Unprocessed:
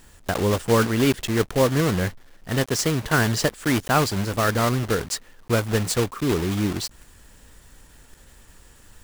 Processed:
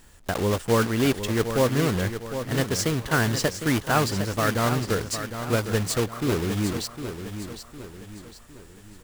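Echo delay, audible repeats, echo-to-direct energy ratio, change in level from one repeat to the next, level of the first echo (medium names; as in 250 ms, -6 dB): 757 ms, 4, -8.5 dB, -7.5 dB, -9.5 dB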